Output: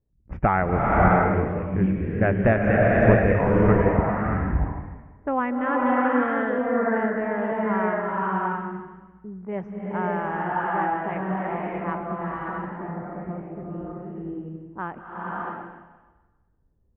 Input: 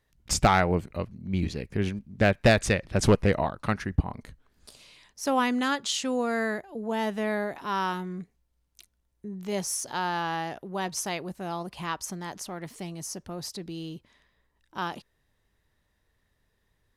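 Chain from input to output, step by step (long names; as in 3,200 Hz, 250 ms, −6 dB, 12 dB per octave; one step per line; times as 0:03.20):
inverse Chebyshev low-pass filter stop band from 3,900 Hz, stop band 40 dB
low-pass that shuts in the quiet parts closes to 370 Hz, open at −25 dBFS
slow-attack reverb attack 610 ms, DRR −4.5 dB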